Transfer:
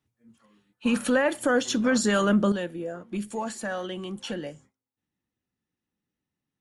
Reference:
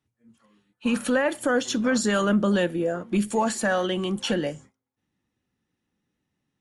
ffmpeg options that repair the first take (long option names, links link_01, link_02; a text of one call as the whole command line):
ffmpeg -i in.wav -af "asetnsamples=nb_out_samples=441:pad=0,asendcmd='2.52 volume volume 8dB',volume=0dB" out.wav